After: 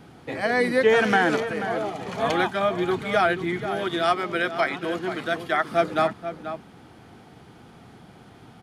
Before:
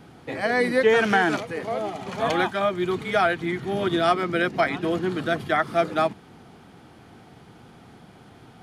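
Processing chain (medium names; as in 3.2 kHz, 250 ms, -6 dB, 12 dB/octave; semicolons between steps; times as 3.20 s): 3.66–5.71 s: bass shelf 290 Hz -10 dB; echo from a far wall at 83 m, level -10 dB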